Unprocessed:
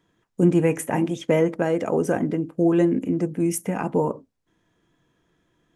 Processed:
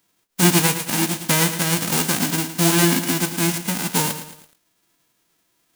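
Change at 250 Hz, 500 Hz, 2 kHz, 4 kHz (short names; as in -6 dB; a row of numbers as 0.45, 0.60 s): -0.5 dB, -5.5 dB, +10.5 dB, n/a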